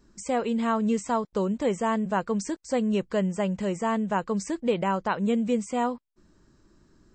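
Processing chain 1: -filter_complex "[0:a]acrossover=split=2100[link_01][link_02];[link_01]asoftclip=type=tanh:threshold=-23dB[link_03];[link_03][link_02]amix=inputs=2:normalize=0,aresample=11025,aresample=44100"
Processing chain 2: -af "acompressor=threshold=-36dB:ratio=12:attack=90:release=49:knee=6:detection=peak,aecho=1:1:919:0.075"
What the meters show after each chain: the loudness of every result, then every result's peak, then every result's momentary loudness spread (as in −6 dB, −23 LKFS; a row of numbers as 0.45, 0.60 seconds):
−30.0, −33.5 LKFS; −19.5, −16.5 dBFS; 4, 2 LU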